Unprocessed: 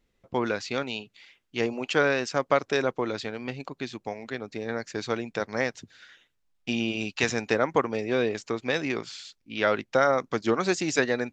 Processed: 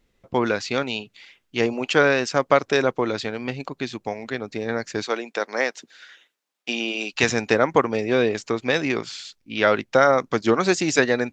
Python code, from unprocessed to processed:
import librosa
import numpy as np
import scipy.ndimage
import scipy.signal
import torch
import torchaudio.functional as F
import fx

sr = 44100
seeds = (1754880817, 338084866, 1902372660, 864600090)

y = fx.bessel_highpass(x, sr, hz=380.0, order=4, at=(5.03, 7.13))
y = y * 10.0 ** (5.5 / 20.0)